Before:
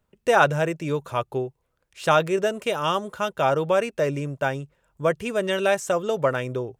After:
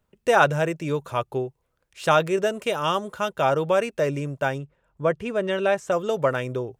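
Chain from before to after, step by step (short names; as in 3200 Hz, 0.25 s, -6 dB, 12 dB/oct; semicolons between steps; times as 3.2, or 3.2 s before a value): 4.58–5.92 LPF 2300 Hz 6 dB/oct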